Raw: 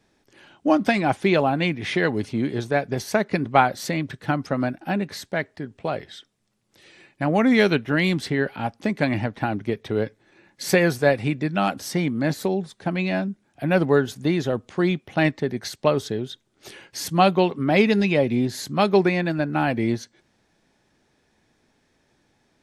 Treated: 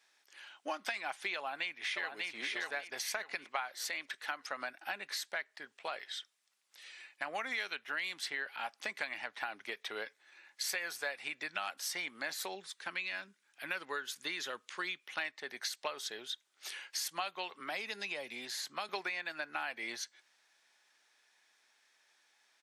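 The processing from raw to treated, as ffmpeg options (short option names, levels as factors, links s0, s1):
-filter_complex "[0:a]asplit=2[s0][s1];[s1]afade=t=in:st=1.37:d=0.01,afade=t=out:st=2.28:d=0.01,aecho=0:1:590|1180|1770|2360:0.595662|0.178699|0.0536096|0.0160829[s2];[s0][s2]amix=inputs=2:normalize=0,asettb=1/sr,asplit=3[s3][s4][s5];[s3]atrim=end=3.454[s6];[s4]atrim=start=3.45:end=4.42,asetpts=PTS-STARTPTS,afade=t=in:d=0.004:c=qsin,afade=t=out:st=0.966:d=0.004:c=qsin,highpass=210[s7];[s5]atrim=start=4.416[s8];[s6][s7]acrossfade=d=0.004:c1=hsin:c2=qsin[s9];[s9][s8]acrossfade=d=0.004:c1=qsin:c2=hsin,asettb=1/sr,asplit=3[s10][s11][s12];[s10]atrim=end=12.554[s13];[s11]atrim=start=12.55:end=15.2,asetpts=PTS-STARTPTS,afade=t=in:d=0.004:c=qsin,afade=t=out:st=2.646:d=0.004:c=qsin,equalizer=f=710:t=o:w=0.5:g=-10.5[s14];[s12]atrim=start=15.196[s15];[s13][s14]acrossfade=d=0.004:c1=hsin:c2=qsin[s16];[s16][s15]acrossfade=d=0.004:c1=qsin:c2=hsin,asettb=1/sr,asplit=3[s17][s18][s19];[s17]atrim=end=17.604[s20];[s18]atrim=start=17.6:end=18.89,asetpts=PTS-STARTPTS,afade=t=in:d=0.004:c=qsin,afade=t=out:st=1.286:d=0.004:c=qsin,acrossover=split=240|1200|4900[s21][s22][s23][s24];[s21]acompressor=threshold=0.0501:ratio=3[s25];[s22]acompressor=threshold=0.0447:ratio=3[s26];[s23]acompressor=threshold=0.00891:ratio=3[s27];[s24]acompressor=threshold=0.00447:ratio=3[s28];[s25][s26][s27][s28]amix=inputs=4:normalize=0[s29];[s19]atrim=start=18.886[s30];[s20][s29]acrossfade=d=0.004:c1=hsin:c2=qsin[s31];[s31][s30]acrossfade=d=0.004:c1=qsin:c2=hsin,highpass=1300,acompressor=threshold=0.0178:ratio=6"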